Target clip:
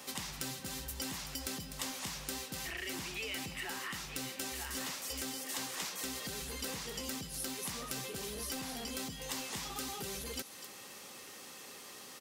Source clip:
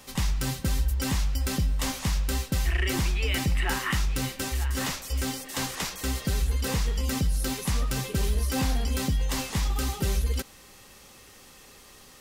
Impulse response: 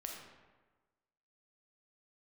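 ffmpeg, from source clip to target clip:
-filter_complex "[0:a]highpass=200,acompressor=threshold=-37dB:ratio=6,acrossover=split=2700[a][b];[a]asoftclip=type=tanh:threshold=-39.5dB[c];[b]aecho=1:1:250:0.376[d];[c][d]amix=inputs=2:normalize=0,volume=1dB"

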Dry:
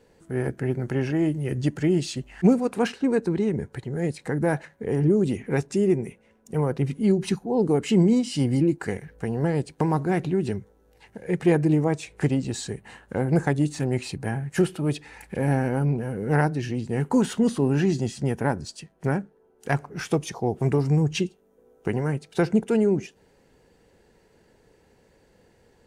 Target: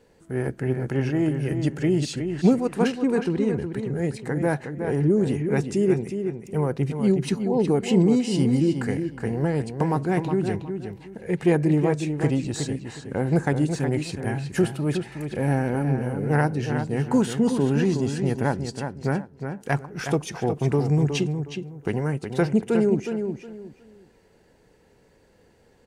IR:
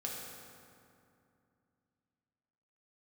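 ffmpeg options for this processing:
-filter_complex "[0:a]asplit=2[a][b];[b]adelay=365,lowpass=f=4.4k:p=1,volume=-7dB,asplit=2[c][d];[d]adelay=365,lowpass=f=4.4k:p=1,volume=0.25,asplit=2[e][f];[f]adelay=365,lowpass=f=4.4k:p=1,volume=0.25[g];[a][c][e][g]amix=inputs=4:normalize=0"

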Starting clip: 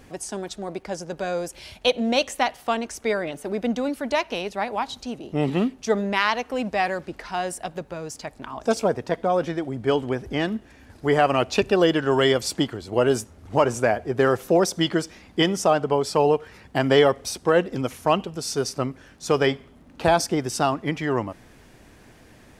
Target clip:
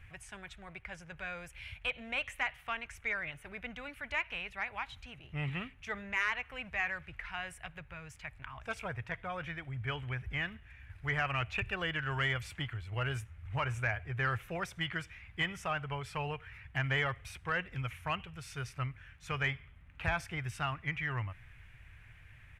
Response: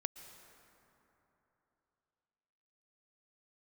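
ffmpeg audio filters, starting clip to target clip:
-filter_complex "[0:a]firequalizer=gain_entry='entry(110,0);entry(220,-25);entry(340,-26);entry(1400,-6);entry(2300,1);entry(4600,-22);entry(9900,-17)':delay=0.05:min_phase=1,asoftclip=type=tanh:threshold=-20.5dB,acrossover=split=2700[a][b];[b]acompressor=threshold=-45dB:ratio=4:attack=1:release=60[c];[a][c]amix=inputs=2:normalize=0"

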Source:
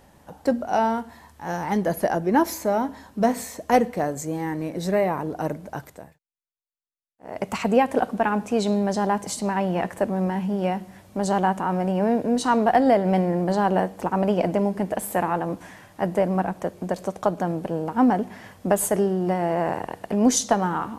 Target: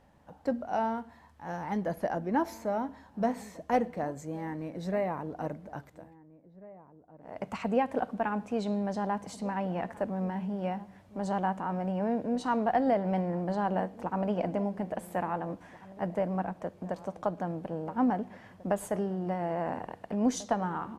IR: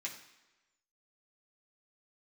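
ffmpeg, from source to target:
-filter_complex "[0:a]lowpass=f=2.6k:p=1,equalizer=f=380:w=4.9:g=-5,asplit=2[a][b];[b]adelay=1691,volume=-18dB,highshelf=f=4k:g=-38[c];[a][c]amix=inputs=2:normalize=0,volume=-8dB"

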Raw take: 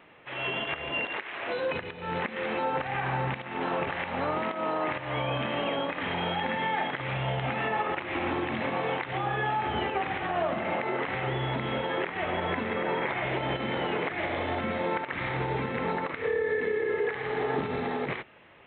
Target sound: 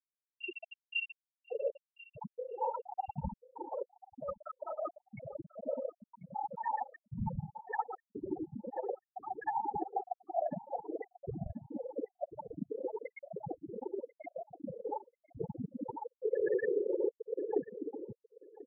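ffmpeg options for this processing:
-af "afftfilt=real='hypot(re,im)*cos(2*PI*random(0))':imag='hypot(re,im)*sin(2*PI*random(1))':win_size=512:overlap=0.75,areverse,acompressor=mode=upward:threshold=-57dB:ratio=2.5,areverse,afftfilt=real='re*gte(hypot(re,im),0.1)':imag='im*gte(hypot(re,im),0.1)':win_size=1024:overlap=0.75,aecho=1:1:1040|2080:0.106|0.018,volume=4dB"

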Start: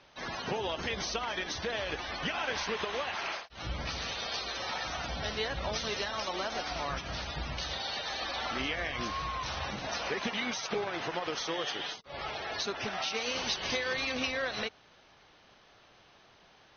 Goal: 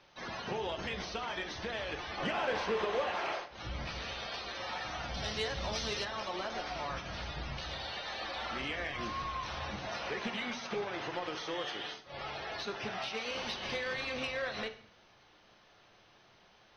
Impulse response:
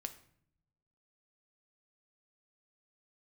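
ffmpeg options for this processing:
-filter_complex "[1:a]atrim=start_sample=2205[a];[0:a][a]afir=irnorm=-1:irlink=0,acrossover=split=4100[b][c];[c]acompressor=threshold=-53dB:ratio=4:attack=1:release=60[d];[b][d]amix=inputs=2:normalize=0,asettb=1/sr,asplit=3[e][f][g];[e]atrim=end=2.174[h];[f]atrim=start=2.17:end=3.57,asetpts=PTS-STARTPTS,afade=t=in:d=0.004:c=qsin,afade=t=out:st=1.396:d=0.004:c=qsin,equalizer=f=480:w=0.54:g=8.5[i];[g]atrim=start=3.566[j];[h][i]acrossfade=d=0.004:c1=hsin:c2=qsin[k];[k][j]acrossfade=d=0.004:c1=qsin:c2=hsin,asoftclip=type=tanh:threshold=-24.5dB,asettb=1/sr,asplit=3[l][m][n];[l]atrim=end=5.144[o];[m]atrim=start=5.14:end=6.05,asetpts=PTS-STARTPTS,afade=t=in:d=0.004:c=qsin,afade=t=out:st=0.906:d=0.004:c=qsin,bass=f=250:g=2,treble=f=4k:g=11[p];[n]atrim=start=6.046[q];[o][p]acrossfade=d=0.004:c1=hsin:c2=qsin[r];[r][q]acrossfade=d=0.004:c1=qsin:c2=hsin"

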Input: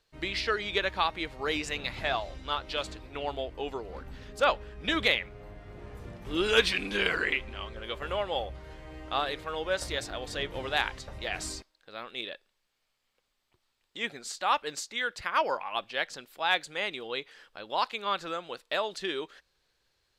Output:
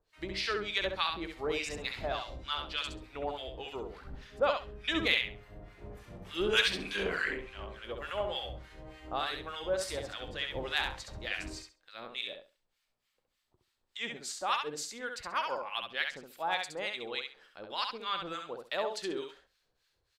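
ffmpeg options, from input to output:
-filter_complex "[0:a]acrossover=split=1100[a][b];[a]aeval=exprs='val(0)*(1-1/2+1/2*cos(2*PI*3.4*n/s))':c=same[c];[b]aeval=exprs='val(0)*(1-1/2-1/2*cos(2*PI*3.4*n/s))':c=same[d];[c][d]amix=inputs=2:normalize=0,aecho=1:1:67|134|201:0.562|0.112|0.0225"

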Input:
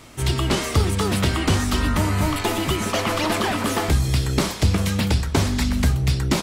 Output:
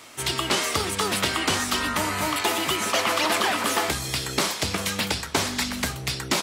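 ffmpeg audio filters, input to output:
-af "highpass=f=760:p=1,volume=2.5dB"

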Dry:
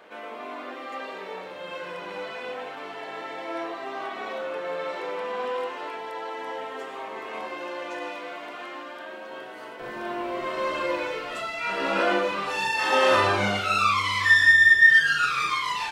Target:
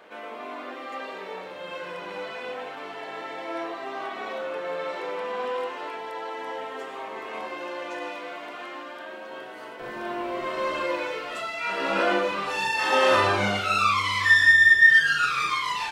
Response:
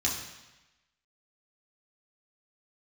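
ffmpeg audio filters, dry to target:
-filter_complex "[0:a]asettb=1/sr,asplit=3[a][b][c];[a]atrim=end=10.844[d];[b]atrim=start=10.84:end=11.9,asetpts=PTS-STARTPTS,afade=t=in:d=0.004:c=qsin,afade=t=out:st=1.056:d=0.004:c=qsin,lowshelf=f=160:g=-6.5[e];[c]atrim=start=11.896[f];[d][e]acrossfade=d=0.004:c1=hsin:c2=qsin[g];[g][f]acrossfade=d=0.004:c1=qsin:c2=hsin"

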